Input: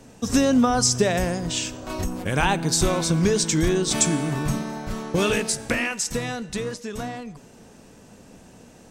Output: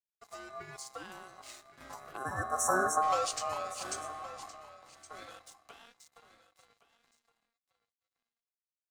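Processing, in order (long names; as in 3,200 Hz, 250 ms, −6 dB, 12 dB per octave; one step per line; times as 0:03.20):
source passing by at 0:02.81, 17 m/s, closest 3.2 metres
high-pass filter 55 Hz 24 dB per octave
leveller curve on the samples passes 1
time-frequency box erased 0:02.16–0:03.03, 870–6,400 Hz
steady tone 3,000 Hz −57 dBFS
flanger 0.38 Hz, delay 3.8 ms, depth 4 ms, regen −86%
dead-zone distortion −59 dBFS
ring modulation 930 Hz
on a send: single-tap delay 1,117 ms −16 dB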